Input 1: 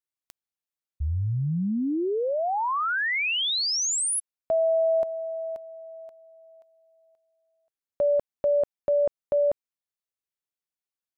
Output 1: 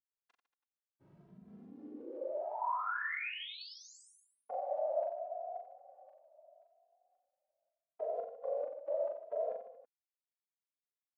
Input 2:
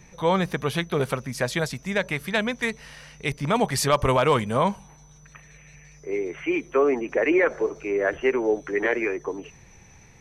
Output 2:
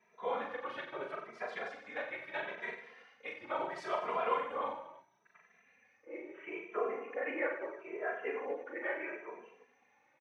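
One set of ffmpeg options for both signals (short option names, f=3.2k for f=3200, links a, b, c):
-filter_complex "[0:a]lowpass=2k,afftfilt=real='hypot(re,im)*cos(2*PI*random(0))':imag='hypot(re,im)*sin(2*PI*random(1))':win_size=512:overlap=0.75,highpass=590,asplit=2[a][b];[b]aecho=0:1:40|90|152.5|230.6|328.3:0.631|0.398|0.251|0.158|0.1[c];[a][c]amix=inputs=2:normalize=0,asplit=2[d][e];[e]adelay=2.6,afreqshift=0.75[f];[d][f]amix=inputs=2:normalize=1,volume=-3dB"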